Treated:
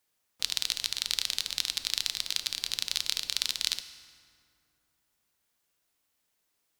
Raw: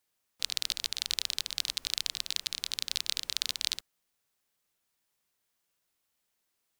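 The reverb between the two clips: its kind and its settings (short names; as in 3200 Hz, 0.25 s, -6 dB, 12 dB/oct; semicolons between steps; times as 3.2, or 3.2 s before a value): FDN reverb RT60 2.4 s, low-frequency decay 1.4×, high-frequency decay 0.6×, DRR 10 dB; gain +2 dB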